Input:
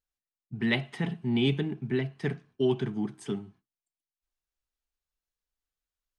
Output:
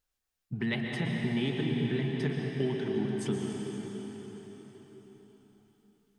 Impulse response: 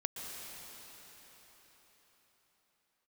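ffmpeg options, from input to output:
-filter_complex "[0:a]acompressor=threshold=-40dB:ratio=3[link_01];[1:a]atrim=start_sample=2205[link_02];[link_01][link_02]afir=irnorm=-1:irlink=0,volume=8dB"

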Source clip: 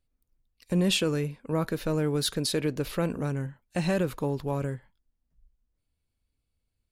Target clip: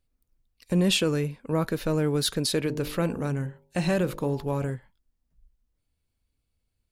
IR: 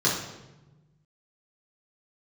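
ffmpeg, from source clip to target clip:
-filter_complex "[0:a]asettb=1/sr,asplit=3[link_01][link_02][link_03];[link_01]atrim=end=2.624[link_04];[link_02]atrim=start=2.62:end=4.7,asetpts=PTS-STARTPTS,afade=type=in:duration=0.004:curve=qsin,afade=type=out:start_time=2.076:duration=0.004:curve=qsin,bandreject=frequency=50.06:width_type=h:width=4,bandreject=frequency=100.12:width_type=h:width=4,bandreject=frequency=150.18:width_type=h:width=4,bandreject=frequency=200.24:width_type=h:width=4,bandreject=frequency=250.3:width_type=h:width=4,bandreject=frequency=300.36:width_type=h:width=4,bandreject=frequency=350.42:width_type=h:width=4,bandreject=frequency=400.48:width_type=h:width=4,bandreject=frequency=450.54:width_type=h:width=4,bandreject=frequency=500.6:width_type=h:width=4,bandreject=frequency=550.66:width_type=h:width=4,bandreject=frequency=600.72:width_type=h:width=4,bandreject=frequency=650.78:width_type=h:width=4,bandreject=frequency=700.84:width_type=h:width=4,bandreject=frequency=750.9:width_type=h:width=4,bandreject=frequency=800.96:width_type=h:width=4,bandreject=frequency=851.02:width_type=h:width=4,bandreject=frequency=901.08:width_type=h:width=4,bandreject=frequency=951.14:width_type=h:width=4[link_05];[link_03]atrim=start=4.696[link_06];[link_04][link_05]acrossfade=duration=0.004:curve1=hsin:curve2=qsin[link_07];[link_07][link_06]acrossfade=duration=0.004:curve1=qsin:curve2=hsin,volume=2dB"

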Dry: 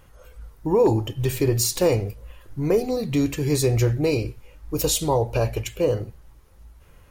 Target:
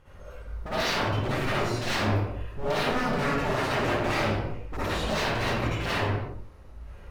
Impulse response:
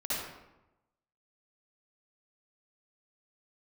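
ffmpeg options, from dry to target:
-filter_complex "[0:a]acrossover=split=2800[link_01][link_02];[link_02]acompressor=threshold=-41dB:ratio=4:attack=1:release=60[link_03];[link_01][link_03]amix=inputs=2:normalize=0,aemphasis=mode=reproduction:type=50fm,aeval=exprs='0.0422*(abs(mod(val(0)/0.0422+3,4)-2)-1)':channel_layout=same[link_04];[1:a]atrim=start_sample=2205,afade=type=out:start_time=0.44:duration=0.01,atrim=end_sample=19845[link_05];[link_04][link_05]afir=irnorm=-1:irlink=0"

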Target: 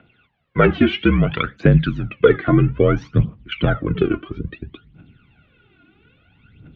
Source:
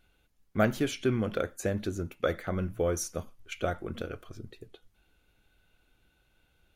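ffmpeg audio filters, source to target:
ffmpeg -i in.wav -filter_complex "[0:a]aphaser=in_gain=1:out_gain=1:delay=2.8:decay=0.75:speed=0.6:type=triangular,asettb=1/sr,asplit=3[link_01][link_02][link_03];[link_01]atrim=end=1.274[link_04];[link_02]atrim=start=1.27:end=2.09,asetpts=PTS-STARTPTS,afade=type=in:duration=0.004:curve=qsin,afade=type=out:start_time=0.816:duration=0.004:curve=qsin,tiltshelf=frequency=1300:gain=-6.5[link_05];[link_03]atrim=start=2.086[link_06];[link_04][link_05]acrossfade=duration=0.004:curve1=hsin:curve2=qsin[link_07];[link_07][link_06]acrossfade=duration=0.004:curve1=qsin:curve2=hsin,highpass=frequency=160:width_type=q:width=0.5412,highpass=frequency=160:width_type=q:width=1.307,lowpass=frequency=3300:width_type=q:width=0.5176,lowpass=frequency=3300:width_type=q:width=0.7071,lowpass=frequency=3300:width_type=q:width=1.932,afreqshift=-51,asubboost=boost=8:cutoff=220,alimiter=level_in=13dB:limit=-1dB:release=50:level=0:latency=1,volume=-1dB" out.wav

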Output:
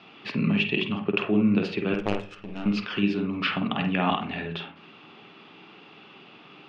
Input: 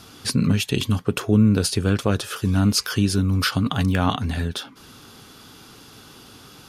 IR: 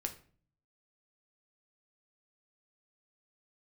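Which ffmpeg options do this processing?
-filter_complex "[0:a]highpass=frequency=190:width=0.5412,highpass=frequency=190:width=1.3066,equalizer=frequency=260:width_type=q:width=4:gain=-10,equalizer=frequency=490:width_type=q:width=4:gain=-7,equalizer=frequency=1000:width_type=q:width=4:gain=-3,equalizer=frequency=1500:width_type=q:width=4:gain=-9,equalizer=frequency=2600:width_type=q:width=4:gain=7,lowpass=frequency=2900:width=0.5412,lowpass=frequency=2900:width=1.3066,asettb=1/sr,asplit=3[link_01][link_02][link_03];[link_01]atrim=end=1.944[link_04];[link_02]atrim=start=1.94:end=2.66,asetpts=PTS-STARTPTS,afade=type=in:duration=0.004:curve=qsin,afade=type=out:start_time=0.716:duration=0.004:curve=qsin,aeval=exprs='0.251*(cos(1*acos(clip(val(0)/0.251,-1,1)))-cos(1*PI/2))+0.0562*(cos(3*acos(clip(val(0)/0.251,-1,1)))-cos(3*PI/2))+0.0355*(cos(4*acos(clip(val(0)/0.251,-1,1)))-cos(4*PI/2))+0.00891*(cos(6*acos(clip(val(0)/0.251,-1,1)))-cos(6*PI/2))+0.00631*(cos(7*acos(clip(val(0)/0.251,-1,1)))-cos(7*PI/2))':channel_layout=same[link_05];[link_03]atrim=start=2.656[link_06];[link_04][link_05]acrossfade=duration=0.004:curve1=hsin:curve2=qsin[link_07];[link_07][link_06]acrossfade=duration=0.004:curve1=qsin:curve2=hsin,asplit=2[link_08][link_09];[1:a]atrim=start_sample=2205,lowpass=2500,adelay=49[link_10];[link_09][link_10]afir=irnorm=-1:irlink=0,volume=-2.5dB[link_11];[link_08][link_11]amix=inputs=2:normalize=0"

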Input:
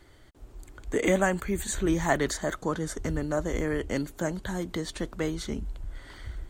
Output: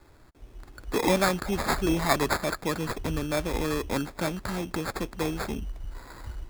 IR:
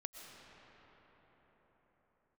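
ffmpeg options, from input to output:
-filter_complex "[0:a]acrossover=split=590|2200[link_01][link_02][link_03];[link_03]dynaudnorm=framelen=290:gausssize=5:maxgain=7.5dB[link_04];[link_01][link_02][link_04]amix=inputs=3:normalize=0,acrusher=samples=15:mix=1:aa=0.000001"

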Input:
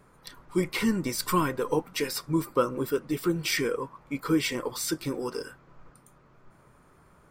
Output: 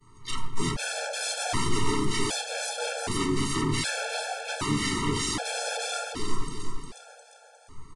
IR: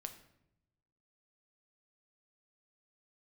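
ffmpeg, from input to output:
-filter_complex "[0:a]bandreject=frequency=50:width_type=h:width=6,bandreject=frequency=100:width_type=h:width=6,bandreject=frequency=150:width_type=h:width=6,bandreject=frequency=200:width_type=h:width=6,bandreject=frequency=250:width_type=h:width=6,bandreject=frequency=300:width_type=h:width=6,bandreject=frequency=350:width_type=h:width=6,bandreject=frequency=400:width_type=h:width=6,bandreject=frequency=450:width_type=h:width=6,bandreject=frequency=500:width_type=h:width=6,agate=range=-33dB:threshold=-49dB:ratio=3:detection=peak,highshelf=frequency=2100:gain=8.5,acrossover=split=130[link_01][link_02];[link_01]acontrast=47[link_03];[link_03][link_02]amix=inputs=2:normalize=0,asoftclip=type=tanh:threshold=-23dB,asplit=4[link_04][link_05][link_06][link_07];[link_05]asetrate=22050,aresample=44100,atempo=2,volume=-10dB[link_08];[link_06]asetrate=33038,aresample=44100,atempo=1.33484,volume=-1dB[link_09];[link_07]asetrate=55563,aresample=44100,atempo=0.793701,volume=-14dB[link_10];[link_04][link_08][link_09][link_10]amix=inputs=4:normalize=0,asplit=2[link_11][link_12];[link_12]aeval=exprs='0.178*sin(PI/2*10*val(0)/0.178)':channel_layout=same,volume=-8dB[link_13];[link_11][link_13]amix=inputs=2:normalize=0,aecho=1:1:327|654|981|1308|1635|1962:0.531|0.244|0.112|0.0517|0.0238|0.0109[link_14];[1:a]atrim=start_sample=2205[link_15];[link_14][link_15]afir=irnorm=-1:irlink=0,asetrate=40517,aresample=44100,aresample=22050,aresample=44100,afftfilt=real='re*gt(sin(2*PI*0.65*pts/sr)*(1-2*mod(floor(b*sr/1024/450),2)),0)':imag='im*gt(sin(2*PI*0.65*pts/sr)*(1-2*mod(floor(b*sr/1024/450),2)),0)':win_size=1024:overlap=0.75"

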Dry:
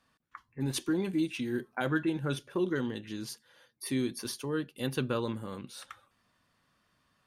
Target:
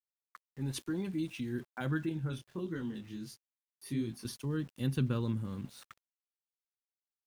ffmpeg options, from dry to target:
ffmpeg -i in.wav -filter_complex "[0:a]asubboost=boost=5.5:cutoff=230,aeval=exprs='val(0)*gte(abs(val(0)),0.00422)':channel_layout=same,asettb=1/sr,asplit=3[link_01][link_02][link_03];[link_01]atrim=end=2.094[link_04];[link_02]atrim=start=2.09:end=4.25,asetpts=PTS-STARTPTS,afade=type=in:duration=0.004:curve=qsin,afade=type=out:start_time=2.156:duration=0.004:curve=qsin,flanger=delay=18:depth=7.2:speed=1.5[link_05];[link_03]atrim=start=4.246[link_06];[link_04][link_05]acrossfade=duration=0.004:curve1=hsin:curve2=qsin[link_07];[link_07][link_06]acrossfade=duration=0.004:curve1=qsin:curve2=hsin,volume=-6.5dB" out.wav

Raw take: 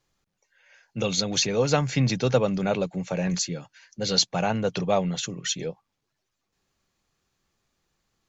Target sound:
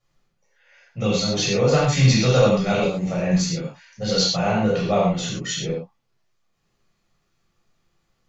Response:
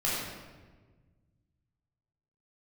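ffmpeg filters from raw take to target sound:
-filter_complex "[0:a]asetnsamples=nb_out_samples=441:pad=0,asendcmd='1.84 highshelf g 8.5;3.04 highshelf g -3',highshelf=frequency=3000:gain=-4[link_01];[1:a]atrim=start_sample=2205,afade=type=out:start_time=0.19:duration=0.01,atrim=end_sample=8820[link_02];[link_01][link_02]afir=irnorm=-1:irlink=0,volume=-3.5dB"

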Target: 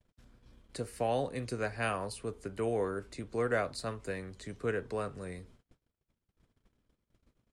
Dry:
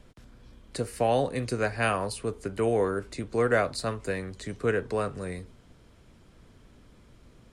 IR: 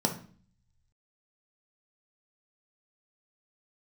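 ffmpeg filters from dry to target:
-af "agate=range=-32dB:threshold=-51dB:ratio=16:detection=peak,volume=-7dB"

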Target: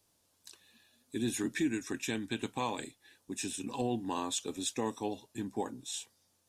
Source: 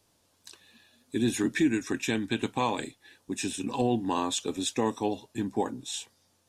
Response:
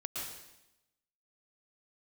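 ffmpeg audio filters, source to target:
-af "highshelf=frequency=6600:gain=7.5,volume=-7dB"

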